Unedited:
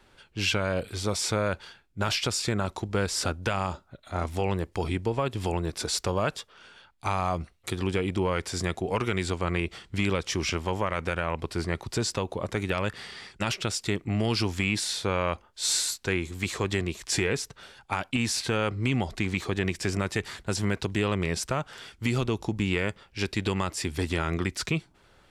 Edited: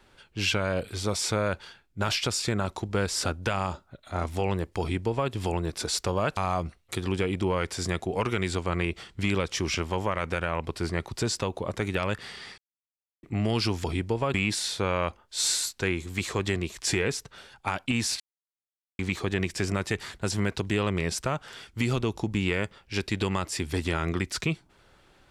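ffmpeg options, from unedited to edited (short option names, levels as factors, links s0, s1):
-filter_complex "[0:a]asplit=8[s0][s1][s2][s3][s4][s5][s6][s7];[s0]atrim=end=6.372[s8];[s1]atrim=start=7.118:end=13.33,asetpts=PTS-STARTPTS,afade=t=out:st=6.208:d=0.004:c=hsin[s9];[s2]atrim=start=13.33:end=13.98,asetpts=PTS-STARTPTS,volume=0[s10];[s3]atrim=start=13.98:end=14.592,asetpts=PTS-STARTPTS,afade=t=in:d=0.004:c=hsin[s11];[s4]atrim=start=4.798:end=5.302[s12];[s5]atrim=start=14.588:end=18.45,asetpts=PTS-STARTPTS,afade=t=out:st=3.858:d=0.004:c=hsin[s13];[s6]atrim=start=18.45:end=19.24,asetpts=PTS-STARTPTS,volume=0[s14];[s7]atrim=start=19.24,asetpts=PTS-STARTPTS,afade=t=in:d=0.004:c=hsin[s15];[s9][s10][s11]concat=n=3:v=0:a=1[s16];[s8][s16]acrossfade=d=0.004:c1=hsin:c2=hsin[s17];[s17][s12]acrossfade=d=0.004:c1=hsin:c2=hsin[s18];[s13][s14][s15]concat=n=3:v=0:a=1[s19];[s18][s19]acrossfade=d=0.004:c1=hsin:c2=hsin"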